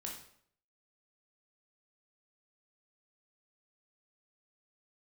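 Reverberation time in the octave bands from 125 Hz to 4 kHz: 0.65, 0.65, 0.65, 0.60, 0.55, 0.50 seconds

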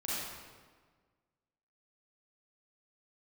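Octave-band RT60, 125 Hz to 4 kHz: 1.8, 1.7, 1.6, 1.5, 1.3, 1.1 seconds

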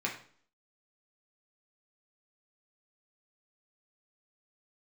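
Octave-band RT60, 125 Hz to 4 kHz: 0.50, 0.60, 0.50, 0.50, 0.45, 0.45 seconds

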